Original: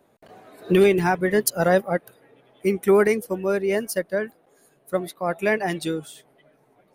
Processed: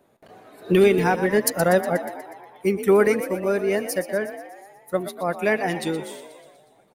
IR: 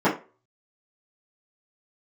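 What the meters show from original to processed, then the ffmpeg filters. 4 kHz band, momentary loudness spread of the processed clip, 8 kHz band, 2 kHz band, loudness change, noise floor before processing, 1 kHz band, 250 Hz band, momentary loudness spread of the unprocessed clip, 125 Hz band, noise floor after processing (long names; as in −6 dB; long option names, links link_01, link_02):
+0.5 dB, 16 LU, +0.5 dB, +0.5 dB, +0.5 dB, −62 dBFS, +0.5 dB, +0.5 dB, 11 LU, 0.0 dB, −59 dBFS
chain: -filter_complex "[0:a]asplit=2[link_01][link_02];[link_02]asplit=7[link_03][link_04][link_05][link_06][link_07][link_08][link_09];[link_03]adelay=121,afreqshift=47,volume=-12dB[link_10];[link_04]adelay=242,afreqshift=94,volume=-16.2dB[link_11];[link_05]adelay=363,afreqshift=141,volume=-20.3dB[link_12];[link_06]adelay=484,afreqshift=188,volume=-24.5dB[link_13];[link_07]adelay=605,afreqshift=235,volume=-28.6dB[link_14];[link_08]adelay=726,afreqshift=282,volume=-32.8dB[link_15];[link_09]adelay=847,afreqshift=329,volume=-36.9dB[link_16];[link_10][link_11][link_12][link_13][link_14][link_15][link_16]amix=inputs=7:normalize=0[link_17];[link_01][link_17]amix=inputs=2:normalize=0"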